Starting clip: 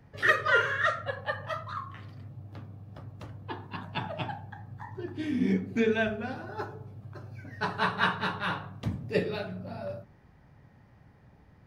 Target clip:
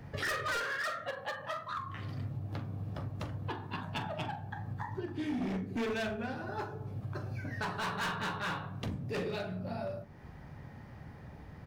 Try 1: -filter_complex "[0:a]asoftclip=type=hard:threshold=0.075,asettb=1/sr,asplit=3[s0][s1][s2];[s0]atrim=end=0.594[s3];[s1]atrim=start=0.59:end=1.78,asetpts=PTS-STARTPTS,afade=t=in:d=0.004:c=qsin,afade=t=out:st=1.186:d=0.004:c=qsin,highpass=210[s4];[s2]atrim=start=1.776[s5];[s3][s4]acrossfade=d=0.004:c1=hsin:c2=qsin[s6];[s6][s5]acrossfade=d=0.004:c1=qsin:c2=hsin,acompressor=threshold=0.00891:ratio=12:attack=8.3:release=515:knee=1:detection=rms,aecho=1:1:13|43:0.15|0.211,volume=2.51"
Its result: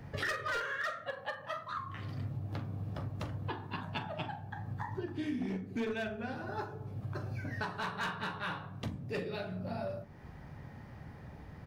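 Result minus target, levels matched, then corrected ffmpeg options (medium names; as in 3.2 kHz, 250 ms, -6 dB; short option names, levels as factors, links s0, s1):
hard clipper: distortion -6 dB
-filter_complex "[0:a]asoftclip=type=hard:threshold=0.0355,asettb=1/sr,asplit=3[s0][s1][s2];[s0]atrim=end=0.594[s3];[s1]atrim=start=0.59:end=1.78,asetpts=PTS-STARTPTS,afade=t=in:d=0.004:c=qsin,afade=t=out:st=1.186:d=0.004:c=qsin,highpass=210[s4];[s2]atrim=start=1.776[s5];[s3][s4]acrossfade=d=0.004:c1=hsin:c2=qsin[s6];[s6][s5]acrossfade=d=0.004:c1=qsin:c2=hsin,acompressor=threshold=0.00891:ratio=12:attack=8.3:release=515:knee=1:detection=rms,aecho=1:1:13|43:0.15|0.211,volume=2.51"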